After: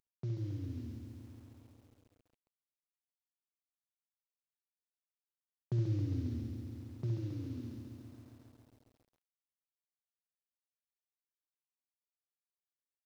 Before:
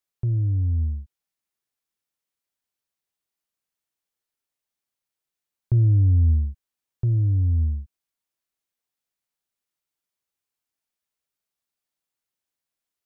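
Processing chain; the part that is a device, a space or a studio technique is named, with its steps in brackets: early wireless headset (HPF 150 Hz 24 dB/oct; CVSD 32 kbps); 7.2–7.74 HPF 96 Hz -> 170 Hz 12 dB/oct; early reflections 52 ms -16.5 dB, 67 ms -7.5 dB; lo-fi delay 0.136 s, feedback 80%, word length 10-bit, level -7.5 dB; gain -5.5 dB

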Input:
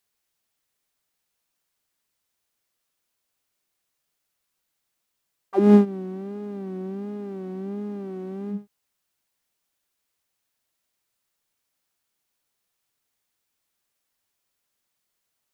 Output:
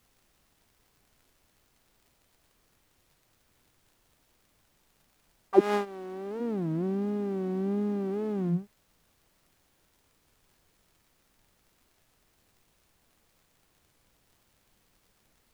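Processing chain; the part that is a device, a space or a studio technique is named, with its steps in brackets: 5.59–6.4 HPF 1100 Hz -> 310 Hz 12 dB/oct; warped LP (record warp 33 1/3 rpm, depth 250 cents; crackle; pink noise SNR 34 dB); gain +2.5 dB

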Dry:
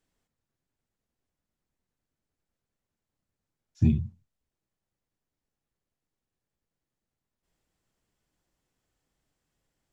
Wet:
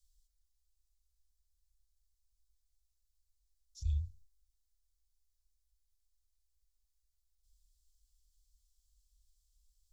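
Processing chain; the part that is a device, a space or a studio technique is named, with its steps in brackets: car stereo with a boomy subwoofer (resonant low shelf 150 Hz +9.5 dB, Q 3; limiter -10 dBFS, peak gain reduction 11 dB); inverse Chebyshev band-stop 100–2100 Hz, stop band 40 dB; gain +5 dB

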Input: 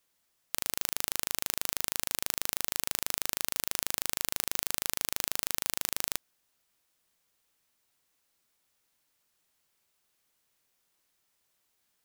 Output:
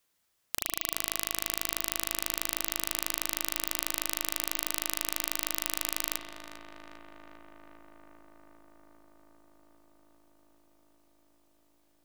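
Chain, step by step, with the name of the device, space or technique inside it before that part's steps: dub delay into a spring reverb (darkening echo 0.399 s, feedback 85%, low-pass 2400 Hz, level -8.5 dB; spring tank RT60 1.3 s, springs 35 ms, chirp 30 ms, DRR 6.5 dB)

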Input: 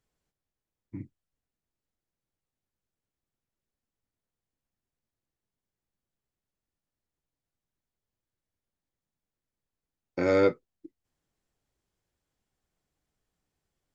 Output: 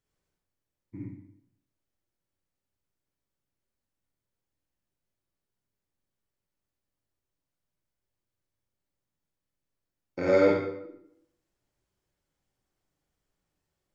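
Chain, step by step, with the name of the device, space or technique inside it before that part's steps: bathroom (reverb RT60 0.80 s, pre-delay 39 ms, DRR -3.5 dB); gain -4 dB

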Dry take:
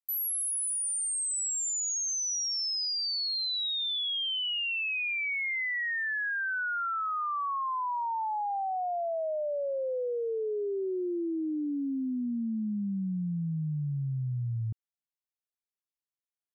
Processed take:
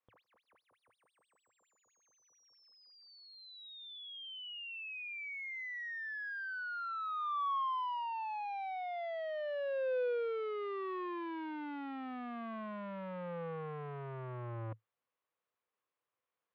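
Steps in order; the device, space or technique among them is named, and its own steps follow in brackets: guitar amplifier (tube stage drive 52 dB, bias 0.55; tone controls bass -7 dB, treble -15 dB; speaker cabinet 76–3700 Hz, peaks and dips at 110 Hz +8 dB, 500 Hz +9 dB, 1100 Hz +8 dB); gain +11 dB

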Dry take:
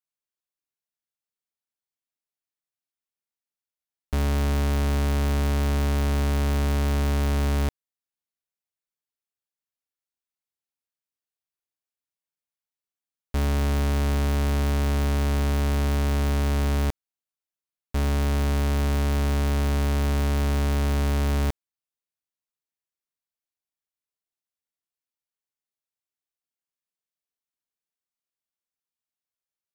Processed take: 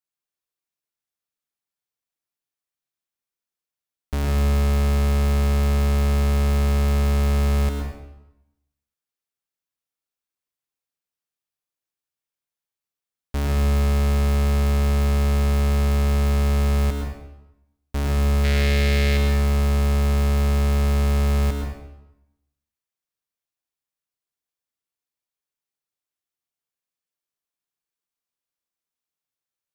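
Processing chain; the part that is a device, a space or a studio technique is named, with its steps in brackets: 18.44–19.17 graphic EQ 500/1000/2000/4000 Hz +6/-10/+12/+8 dB; bathroom (reverb RT60 0.90 s, pre-delay 99 ms, DRR 1.5 dB)

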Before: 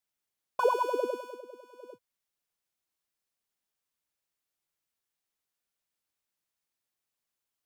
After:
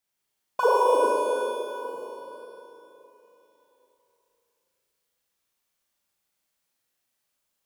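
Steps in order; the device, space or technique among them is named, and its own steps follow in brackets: tunnel (flutter echo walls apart 6.5 m, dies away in 0.54 s; reverb RT60 3.6 s, pre-delay 29 ms, DRR -1 dB); gain +3 dB

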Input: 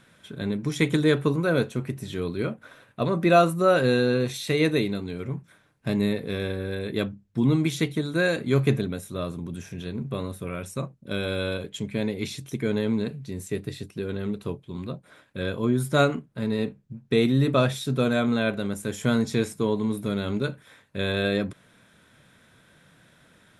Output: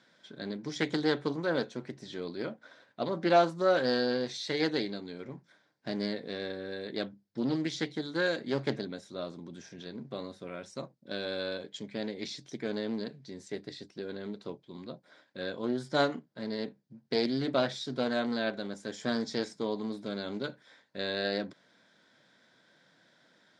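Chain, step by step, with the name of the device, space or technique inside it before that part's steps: full-range speaker at full volume (Doppler distortion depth 0.34 ms; speaker cabinet 280–6300 Hz, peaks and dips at 430 Hz -4 dB, 1200 Hz -7 dB, 2600 Hz -9 dB, 4800 Hz +7 dB); gain -4 dB

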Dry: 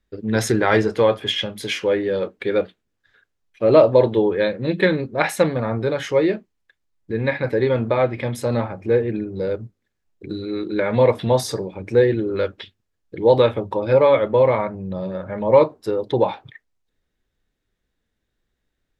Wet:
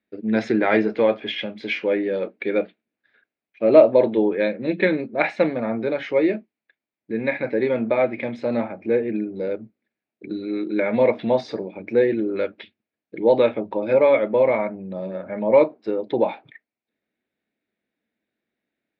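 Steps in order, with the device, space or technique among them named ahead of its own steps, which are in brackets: kitchen radio (speaker cabinet 210–4100 Hz, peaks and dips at 220 Hz +8 dB, 310 Hz +5 dB, 650 Hz +6 dB, 1100 Hz -4 dB, 2300 Hz +8 dB, 3200 Hz -4 dB); gain -4 dB

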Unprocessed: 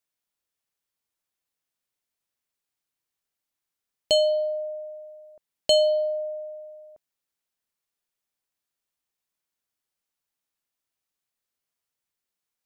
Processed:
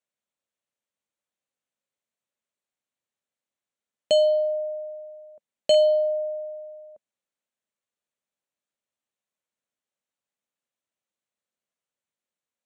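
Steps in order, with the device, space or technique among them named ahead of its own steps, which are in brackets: car door speaker with a rattle (rattling part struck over -37 dBFS, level -25 dBFS; speaker cabinet 93–8600 Hz, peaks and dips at 220 Hz +6 dB, 560 Hz +8 dB, 5000 Hz -10 dB); gain -3 dB

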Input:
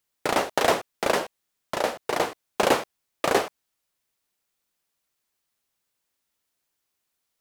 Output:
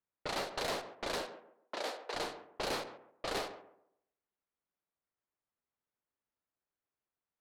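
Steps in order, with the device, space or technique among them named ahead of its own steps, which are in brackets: rockabilly slapback (tube stage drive 26 dB, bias 0.45; tape echo 0.137 s, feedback 32%, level -9.5 dB, low-pass 1500 Hz); 1.25–2.13 HPF 110 Hz -> 390 Hz 24 dB/oct; dynamic EQ 4200 Hz, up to +8 dB, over -55 dBFS, Q 2.7; low-pass opened by the level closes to 1600 Hz, open at -26 dBFS; gain -7 dB

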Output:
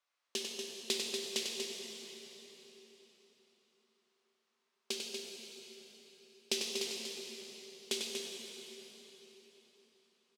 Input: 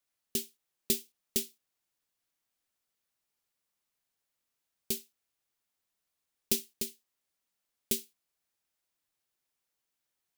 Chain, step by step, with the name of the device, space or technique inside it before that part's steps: station announcement (BPF 490–4800 Hz; bell 1100 Hz +6 dB 0.41 oct; loudspeakers at several distances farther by 33 m -6 dB, 82 m -7 dB; reverb RT60 4.2 s, pre-delay 17 ms, DRR 0.5 dB); 4.97–6.58 bell 1100 Hz -6 dB 0.24 oct; gain +2.5 dB

